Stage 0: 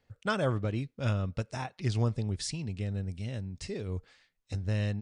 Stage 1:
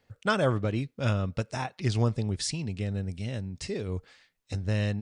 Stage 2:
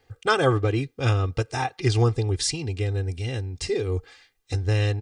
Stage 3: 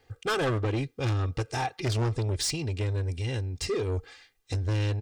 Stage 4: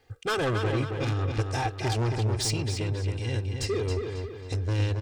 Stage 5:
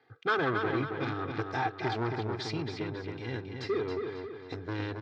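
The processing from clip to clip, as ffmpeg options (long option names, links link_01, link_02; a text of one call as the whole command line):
ffmpeg -i in.wav -af "lowshelf=frequency=74:gain=-7.5,volume=4.5dB" out.wav
ffmpeg -i in.wav -af "aecho=1:1:2.5:0.89,volume=4dB" out.wav
ffmpeg -i in.wav -af "asoftclip=type=tanh:threshold=-23.5dB" out.wav
ffmpeg -i in.wav -filter_complex "[0:a]asplit=2[link_01][link_02];[link_02]adelay=272,lowpass=frequency=4900:poles=1,volume=-5dB,asplit=2[link_03][link_04];[link_04]adelay=272,lowpass=frequency=4900:poles=1,volume=0.45,asplit=2[link_05][link_06];[link_06]adelay=272,lowpass=frequency=4900:poles=1,volume=0.45,asplit=2[link_07][link_08];[link_08]adelay=272,lowpass=frequency=4900:poles=1,volume=0.45,asplit=2[link_09][link_10];[link_10]adelay=272,lowpass=frequency=4900:poles=1,volume=0.45,asplit=2[link_11][link_12];[link_12]adelay=272,lowpass=frequency=4900:poles=1,volume=0.45[link_13];[link_01][link_03][link_05][link_07][link_09][link_11][link_13]amix=inputs=7:normalize=0" out.wav
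ffmpeg -i in.wav -af "highpass=frequency=150:width=0.5412,highpass=frequency=150:width=1.3066,equalizer=frequency=210:width_type=q:width=4:gain=-4,equalizer=frequency=540:width_type=q:width=4:gain=-8,equalizer=frequency=1400:width_type=q:width=4:gain=4,equalizer=frequency=2800:width_type=q:width=4:gain=-10,lowpass=frequency=3800:width=0.5412,lowpass=frequency=3800:width=1.3066" out.wav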